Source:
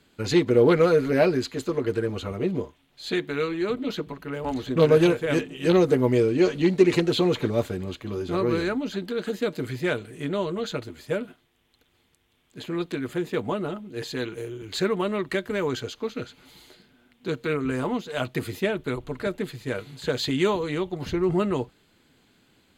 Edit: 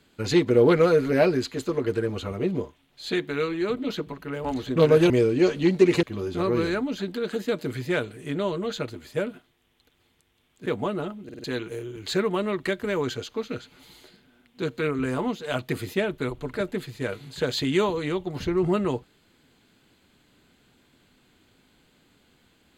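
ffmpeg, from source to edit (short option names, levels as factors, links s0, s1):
-filter_complex "[0:a]asplit=8[s0][s1][s2][s3][s4][s5][s6][s7];[s0]atrim=end=5.102[s8];[s1]atrim=start=6.088:end=7.022[s9];[s2]atrim=start=7.968:end=12.602[s10];[s3]atrim=start=13.318:end=13.952[s11];[s4]atrim=start=13.898:end=13.952[s12];[s5]atrim=start=13.898:end=13.952[s13];[s6]atrim=start=13.898:end=13.952[s14];[s7]atrim=start=14.098[s15];[s8][s9]acrossfade=d=0.004:c1=hsin:c2=hsin[s16];[s16][s10]acrossfade=d=0.004:c1=hsin:c2=hsin[s17];[s17][s11]acrossfade=d=0.004:c1=hsin:c2=hsin[s18];[s18][s12]acrossfade=d=0.004:c1=hsin:c2=hsin[s19];[s19][s13]acrossfade=d=0.004:c1=hsin:c2=hsin[s20];[s20][s14]acrossfade=d=0.004:c1=hsin:c2=hsin[s21];[s21][s15]acrossfade=d=0.004:c1=hsin:c2=hsin"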